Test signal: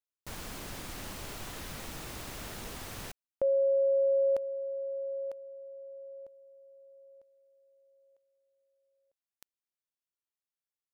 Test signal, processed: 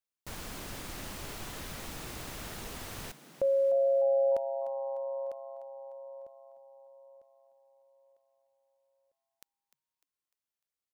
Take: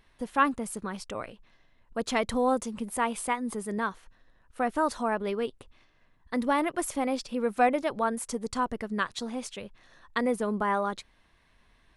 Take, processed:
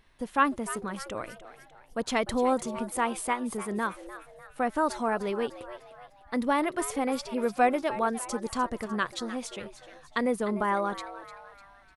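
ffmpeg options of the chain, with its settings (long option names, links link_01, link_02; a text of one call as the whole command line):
ffmpeg -i in.wav -filter_complex "[0:a]asplit=5[link_01][link_02][link_03][link_04][link_05];[link_02]adelay=300,afreqshift=130,volume=-14dB[link_06];[link_03]adelay=600,afreqshift=260,volume=-20.7dB[link_07];[link_04]adelay=900,afreqshift=390,volume=-27.5dB[link_08];[link_05]adelay=1200,afreqshift=520,volume=-34.2dB[link_09];[link_01][link_06][link_07][link_08][link_09]amix=inputs=5:normalize=0" out.wav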